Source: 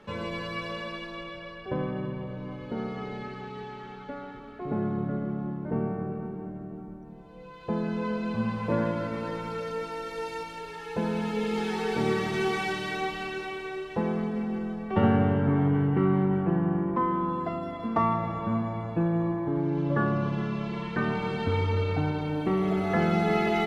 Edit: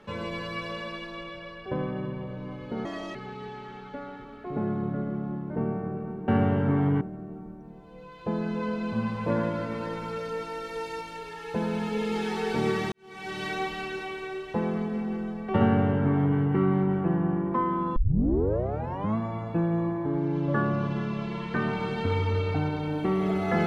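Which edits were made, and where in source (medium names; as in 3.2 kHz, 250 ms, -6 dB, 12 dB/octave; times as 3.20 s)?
2.85–3.30 s: speed 150%
12.34–12.85 s: fade in quadratic
15.07–15.80 s: copy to 6.43 s
17.38 s: tape start 1.21 s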